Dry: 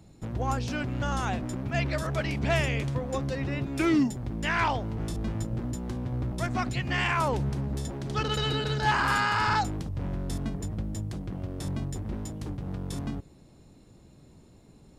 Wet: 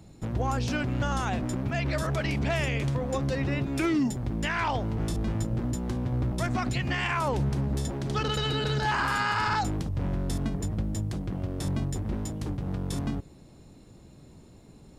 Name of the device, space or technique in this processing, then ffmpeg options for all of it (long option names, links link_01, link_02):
clipper into limiter: -af "asoftclip=type=hard:threshold=-15.5dB,alimiter=limit=-22dB:level=0:latency=1:release=54,volume=3dB"